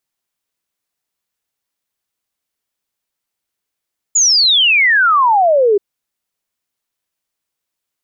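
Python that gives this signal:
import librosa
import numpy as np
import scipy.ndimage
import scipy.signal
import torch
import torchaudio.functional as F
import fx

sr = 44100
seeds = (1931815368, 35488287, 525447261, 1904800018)

y = fx.ess(sr, length_s=1.63, from_hz=7100.0, to_hz=390.0, level_db=-8.0)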